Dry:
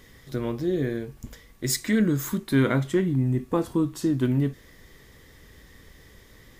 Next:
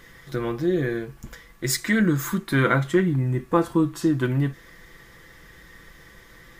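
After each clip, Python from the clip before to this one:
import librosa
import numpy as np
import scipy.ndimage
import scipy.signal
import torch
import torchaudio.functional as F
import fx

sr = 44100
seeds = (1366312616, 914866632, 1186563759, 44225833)

y = fx.peak_eq(x, sr, hz=1400.0, db=8.0, octaves=1.4)
y = y + 0.46 * np.pad(y, (int(5.9 * sr / 1000.0), 0))[:len(y)]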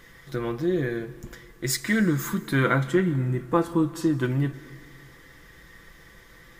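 y = fx.rev_plate(x, sr, seeds[0], rt60_s=2.0, hf_ratio=0.85, predelay_ms=105, drr_db=17.0)
y = y * librosa.db_to_amplitude(-2.0)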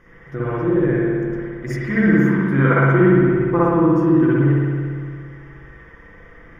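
y = scipy.signal.lfilter(np.full(11, 1.0 / 11), 1.0, x)
y = fx.rev_spring(y, sr, rt60_s=2.0, pass_ms=(58,), chirp_ms=70, drr_db=-8.5)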